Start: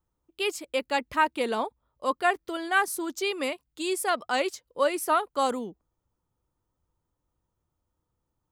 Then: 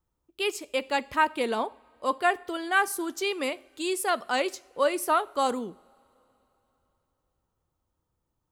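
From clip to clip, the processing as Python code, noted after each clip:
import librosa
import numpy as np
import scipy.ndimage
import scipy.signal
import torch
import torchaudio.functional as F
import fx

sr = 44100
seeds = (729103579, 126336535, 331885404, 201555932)

y = fx.rev_double_slope(x, sr, seeds[0], early_s=0.48, late_s=3.8, knee_db=-22, drr_db=17.0)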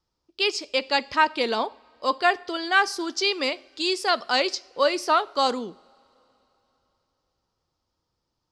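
y = fx.lowpass_res(x, sr, hz=5000.0, q=4.8)
y = fx.low_shelf(y, sr, hz=160.0, db=-6.5)
y = F.gain(torch.from_numpy(y), 3.0).numpy()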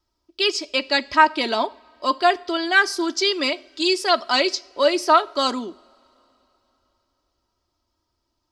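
y = x + 0.68 * np.pad(x, (int(3.1 * sr / 1000.0), 0))[:len(x)]
y = F.gain(torch.from_numpy(y), 2.0).numpy()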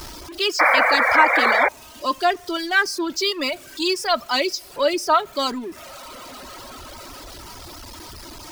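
y = x + 0.5 * 10.0 ** (-27.0 / 20.0) * np.sign(x)
y = fx.spec_paint(y, sr, seeds[1], shape='noise', start_s=0.59, length_s=1.1, low_hz=470.0, high_hz=2400.0, level_db=-12.0)
y = fx.dereverb_blind(y, sr, rt60_s=1.2)
y = F.gain(torch.from_numpy(y), -2.5).numpy()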